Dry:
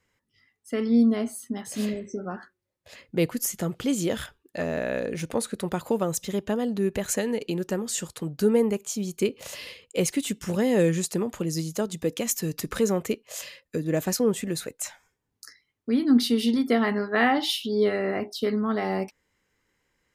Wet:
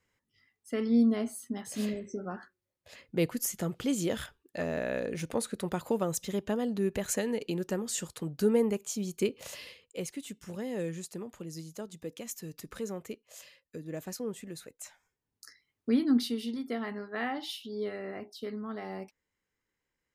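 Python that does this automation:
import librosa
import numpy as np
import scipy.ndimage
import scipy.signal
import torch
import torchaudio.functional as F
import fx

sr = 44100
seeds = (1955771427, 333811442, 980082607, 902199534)

y = fx.gain(x, sr, db=fx.line((9.48, -4.5), (10.08, -13.5), (14.74, -13.5), (15.89, -1.5), (16.45, -12.5)))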